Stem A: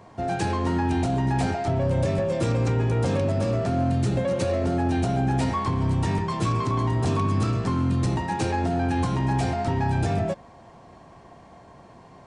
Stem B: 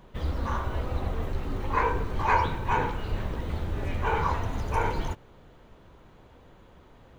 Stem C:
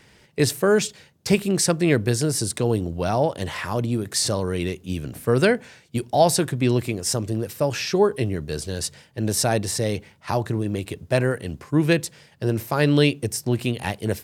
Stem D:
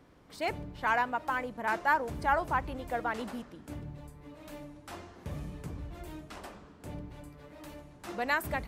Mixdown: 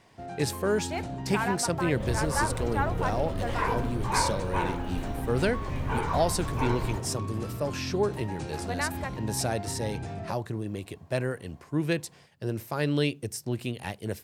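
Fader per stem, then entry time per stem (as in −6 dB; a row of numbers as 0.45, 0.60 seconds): −12.5, −4.0, −8.5, −2.5 decibels; 0.00, 1.85, 0.00, 0.50 seconds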